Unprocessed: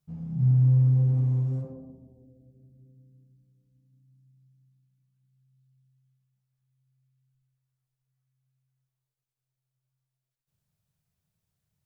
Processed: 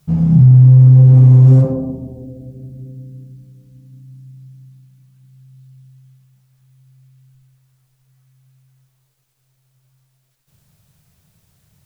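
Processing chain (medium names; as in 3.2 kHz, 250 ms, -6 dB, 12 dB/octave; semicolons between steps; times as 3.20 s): loudness maximiser +24 dB; trim -1 dB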